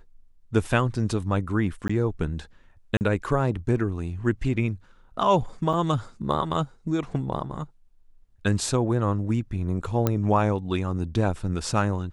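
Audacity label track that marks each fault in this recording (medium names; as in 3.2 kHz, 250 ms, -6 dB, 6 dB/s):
1.880000	1.900000	dropout 15 ms
2.970000	3.010000	dropout 39 ms
5.730000	5.730000	dropout 4 ms
10.070000	10.070000	pop -9 dBFS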